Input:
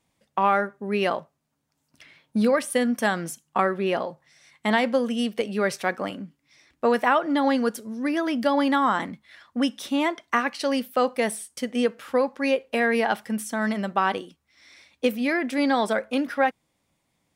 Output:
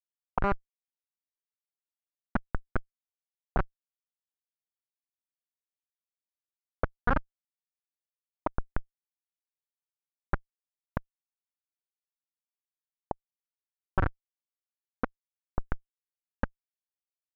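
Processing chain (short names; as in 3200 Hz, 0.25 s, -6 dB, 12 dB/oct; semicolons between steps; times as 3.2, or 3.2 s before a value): recorder AGC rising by 24 dB/s; Schmitt trigger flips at -12.5 dBFS; envelope low-pass 580–1500 Hz up, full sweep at -33 dBFS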